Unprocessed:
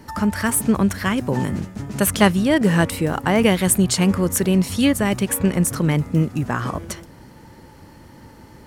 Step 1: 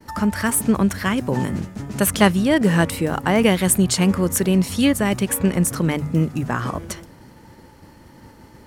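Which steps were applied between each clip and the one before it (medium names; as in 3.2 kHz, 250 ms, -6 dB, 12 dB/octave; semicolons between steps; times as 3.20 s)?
hum notches 50/100/150 Hz; expander -42 dBFS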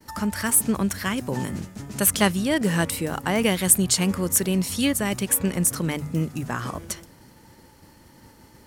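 treble shelf 3.5 kHz +9 dB; trim -6 dB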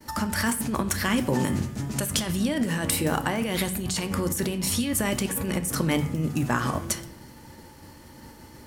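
compressor with a negative ratio -26 dBFS, ratio -1; on a send at -8 dB: reverberation RT60 0.65 s, pre-delay 3 ms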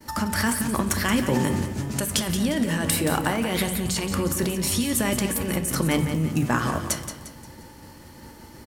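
feedback delay 176 ms, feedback 41%, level -9.5 dB; trim +1.5 dB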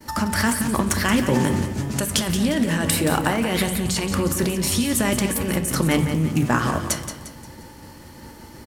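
loudspeaker Doppler distortion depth 0.11 ms; trim +3 dB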